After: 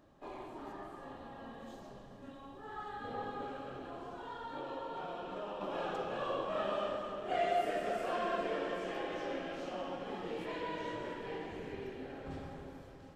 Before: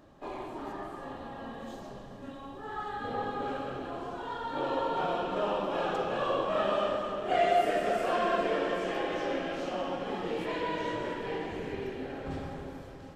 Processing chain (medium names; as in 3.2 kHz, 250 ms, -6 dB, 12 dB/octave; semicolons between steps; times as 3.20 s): 3.44–5.61 s: compression 3:1, threshold -33 dBFS, peak gain reduction 6 dB; trim -7 dB